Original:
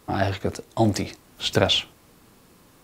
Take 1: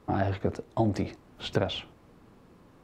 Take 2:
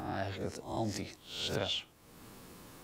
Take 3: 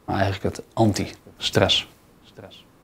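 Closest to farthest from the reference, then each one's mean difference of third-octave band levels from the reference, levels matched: 3, 1, 2; 2.0, 5.5, 8.0 dB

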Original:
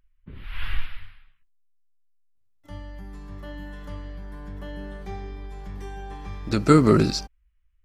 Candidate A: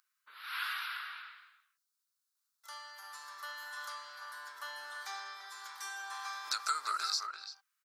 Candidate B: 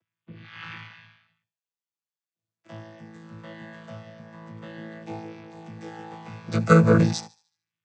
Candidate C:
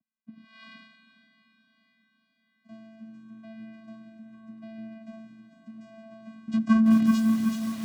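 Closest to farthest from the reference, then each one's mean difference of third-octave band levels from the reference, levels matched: B, C, A; 4.0, 10.5, 19.0 dB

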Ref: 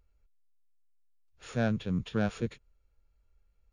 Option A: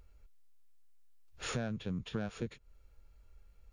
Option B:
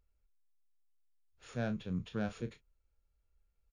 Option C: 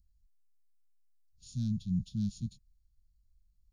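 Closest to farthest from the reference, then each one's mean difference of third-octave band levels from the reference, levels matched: B, A, C; 1.0, 4.0, 11.5 dB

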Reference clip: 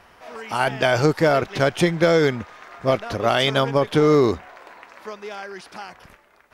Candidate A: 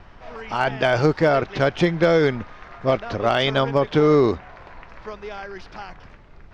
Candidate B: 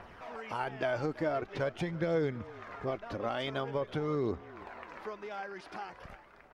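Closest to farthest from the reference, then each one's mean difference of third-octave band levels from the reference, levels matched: A, B; 3.0, 5.5 dB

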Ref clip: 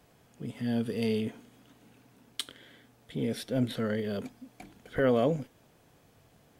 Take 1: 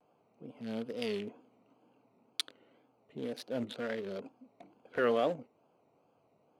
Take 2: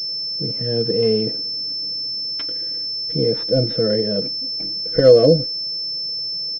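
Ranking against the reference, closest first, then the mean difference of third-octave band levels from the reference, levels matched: 1, 2; 6.0, 9.0 dB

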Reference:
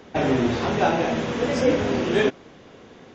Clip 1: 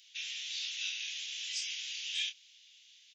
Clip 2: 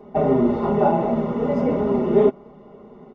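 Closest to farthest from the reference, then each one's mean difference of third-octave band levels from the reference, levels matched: 2, 1; 7.5, 23.5 dB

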